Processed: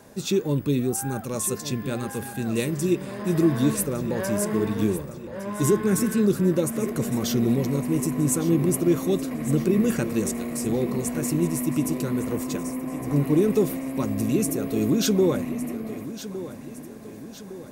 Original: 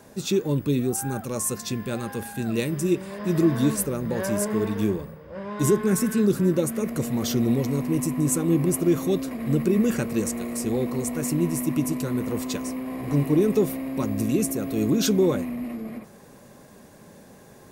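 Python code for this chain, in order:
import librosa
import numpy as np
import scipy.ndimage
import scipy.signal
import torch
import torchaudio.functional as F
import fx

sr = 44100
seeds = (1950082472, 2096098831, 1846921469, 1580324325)

p1 = fx.peak_eq(x, sr, hz=3800.0, db=-7.0, octaves=1.2, at=(12.36, 13.24))
y = p1 + fx.echo_feedback(p1, sr, ms=1160, feedback_pct=51, wet_db=-13.5, dry=0)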